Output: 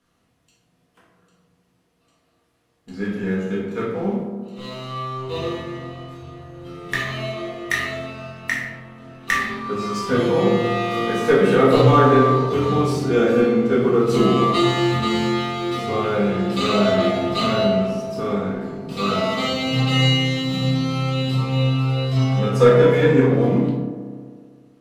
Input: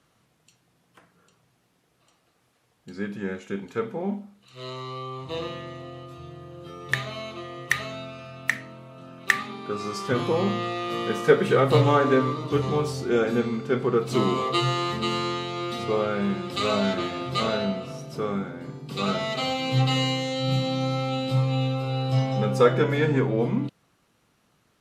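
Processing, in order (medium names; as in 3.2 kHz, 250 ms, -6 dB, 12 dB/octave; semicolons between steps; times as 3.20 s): waveshaping leveller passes 1; feedback echo behind a band-pass 64 ms, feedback 81%, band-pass 470 Hz, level -9 dB; reverberation RT60 0.80 s, pre-delay 4 ms, DRR -4.5 dB; trim -5 dB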